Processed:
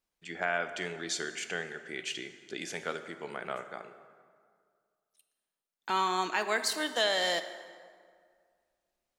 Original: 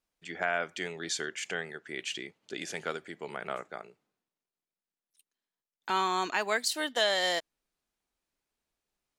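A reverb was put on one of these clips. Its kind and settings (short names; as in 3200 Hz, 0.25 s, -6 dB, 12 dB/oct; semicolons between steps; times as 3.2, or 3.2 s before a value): plate-style reverb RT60 2 s, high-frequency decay 0.6×, DRR 9 dB; gain -1 dB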